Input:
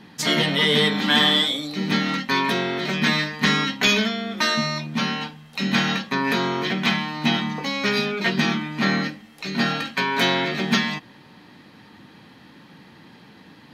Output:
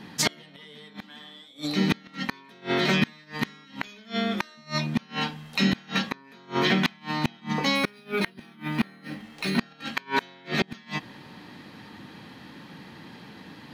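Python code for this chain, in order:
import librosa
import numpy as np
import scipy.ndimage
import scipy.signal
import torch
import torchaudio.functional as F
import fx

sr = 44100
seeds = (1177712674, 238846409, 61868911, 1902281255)

y = fx.gate_flip(x, sr, shuts_db=-13.0, range_db=-31)
y = fx.resample_linear(y, sr, factor=3, at=(7.75, 9.59))
y = y * 10.0 ** (2.5 / 20.0)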